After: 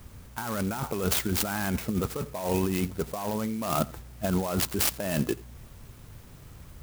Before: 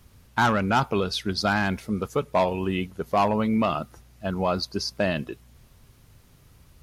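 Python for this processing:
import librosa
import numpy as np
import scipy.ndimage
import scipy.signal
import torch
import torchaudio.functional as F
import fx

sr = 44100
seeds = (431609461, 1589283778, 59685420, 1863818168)

p1 = fx.over_compress(x, sr, threshold_db=-30.0, ratio=-1.0)
p2 = p1 + fx.echo_single(p1, sr, ms=85, db=-22.0, dry=0)
p3 = fx.clock_jitter(p2, sr, seeds[0], jitter_ms=0.068)
y = p3 * 10.0 ** (1.5 / 20.0)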